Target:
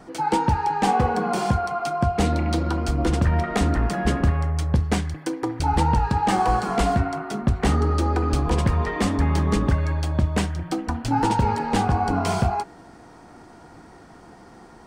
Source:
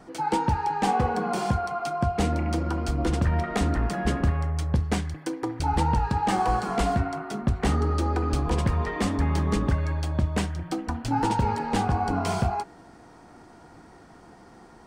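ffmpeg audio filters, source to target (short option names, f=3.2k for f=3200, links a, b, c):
-filter_complex "[0:a]asettb=1/sr,asplit=3[a][b][c];[a]atrim=end=2.264[d];[b]atrim=start=2.26:end=2.77,asetpts=PTS-STARTPTS,afade=t=in:d=0.004:c=qsin,afade=t=out:st=0.506:d=0.004:c=qsin,equalizer=f=3.9k:w=3.7:g=8.5[e];[c]atrim=start=2.766[f];[d][e]acrossfade=d=0.004:c1=hsin:c2=qsin[g];[g][f]acrossfade=d=0.004:c1=qsin:c2=hsin,volume=3.5dB"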